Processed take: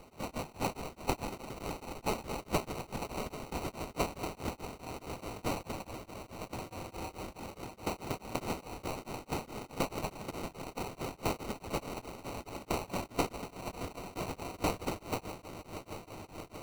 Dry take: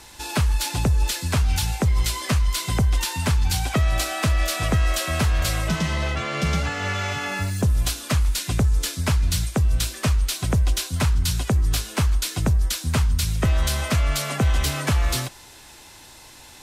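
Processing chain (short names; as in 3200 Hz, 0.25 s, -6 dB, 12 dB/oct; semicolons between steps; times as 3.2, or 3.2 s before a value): inverse Chebyshev high-pass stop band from 2000 Hz, stop band 50 dB; in parallel at -2 dB: limiter -23.5 dBFS, peak gain reduction 8 dB; 4.42–5.2 on the sum: compressor, threshold -32 dBFS, peak gain reduction 9.5 dB; rotary speaker horn 7 Hz, later 0.65 Hz, at 3.79; sample-and-hold 26×; on a send: swelling echo 0.158 s, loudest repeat 5, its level -16 dB; on the sum: beating tremolo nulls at 4.7 Hz; gain -2 dB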